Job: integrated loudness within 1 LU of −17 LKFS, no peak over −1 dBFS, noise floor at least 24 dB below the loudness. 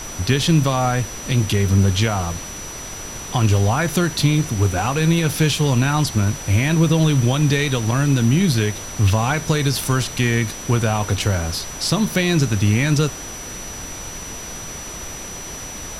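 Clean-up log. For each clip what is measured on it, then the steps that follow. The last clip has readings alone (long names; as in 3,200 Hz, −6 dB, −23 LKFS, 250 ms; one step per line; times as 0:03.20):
interfering tone 5,900 Hz; level of the tone −33 dBFS; background noise floor −32 dBFS; target noise floor −43 dBFS; integrated loudness −18.5 LKFS; sample peak −5.0 dBFS; target loudness −17.0 LKFS
→ notch filter 5,900 Hz, Q 30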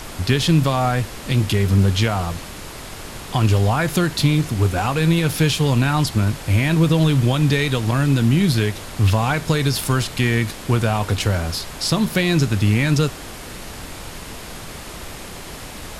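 interfering tone none found; background noise floor −35 dBFS; target noise floor −43 dBFS
→ noise reduction from a noise print 8 dB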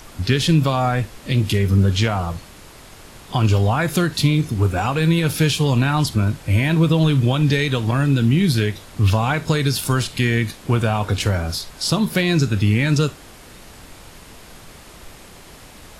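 background noise floor −43 dBFS; integrated loudness −19.0 LKFS; sample peak −5.0 dBFS; target loudness −17.0 LKFS
→ level +2 dB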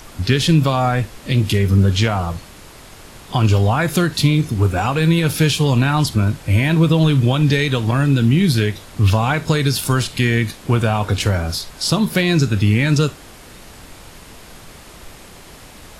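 integrated loudness −17.0 LKFS; sample peak −3.0 dBFS; background noise floor −41 dBFS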